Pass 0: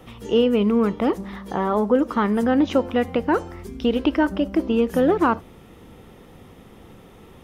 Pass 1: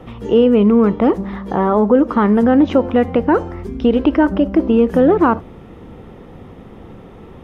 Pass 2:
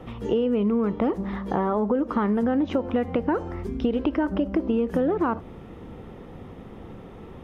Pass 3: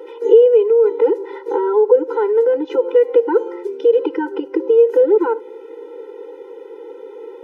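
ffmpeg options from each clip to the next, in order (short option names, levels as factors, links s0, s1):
-filter_complex "[0:a]lowpass=f=1300:p=1,asplit=2[s0][s1];[s1]alimiter=limit=0.158:level=0:latency=1,volume=1.12[s2];[s0][s2]amix=inputs=2:normalize=0,volume=1.33"
-af "acompressor=threshold=0.158:ratio=6,volume=0.631"
-af "highpass=f=450:t=q:w=4.2,afftfilt=real='re*eq(mod(floor(b*sr/1024/260),2),1)':imag='im*eq(mod(floor(b*sr/1024/260),2),1)':win_size=1024:overlap=0.75,volume=1.58"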